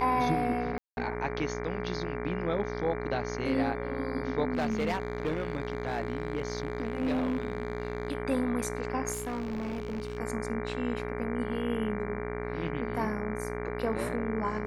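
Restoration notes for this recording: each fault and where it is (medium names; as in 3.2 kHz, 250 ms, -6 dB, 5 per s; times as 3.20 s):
buzz 60 Hz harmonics 39 -37 dBFS
whine 420 Hz -38 dBFS
0.78–0.97 s: dropout 191 ms
4.53–8.13 s: clipped -25 dBFS
9.12–10.18 s: clipped -31 dBFS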